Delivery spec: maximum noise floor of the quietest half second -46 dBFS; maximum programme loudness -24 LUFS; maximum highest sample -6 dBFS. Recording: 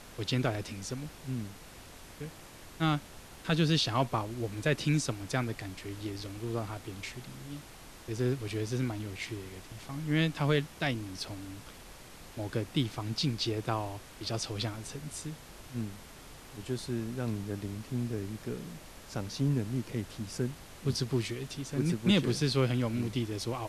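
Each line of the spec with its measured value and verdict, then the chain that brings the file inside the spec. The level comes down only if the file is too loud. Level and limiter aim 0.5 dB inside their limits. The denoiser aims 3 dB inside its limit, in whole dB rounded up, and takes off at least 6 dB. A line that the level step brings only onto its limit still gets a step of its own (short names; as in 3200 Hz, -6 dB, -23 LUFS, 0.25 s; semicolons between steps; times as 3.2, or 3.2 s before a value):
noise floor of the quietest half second -50 dBFS: OK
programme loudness -33.5 LUFS: OK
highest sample -15.0 dBFS: OK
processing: none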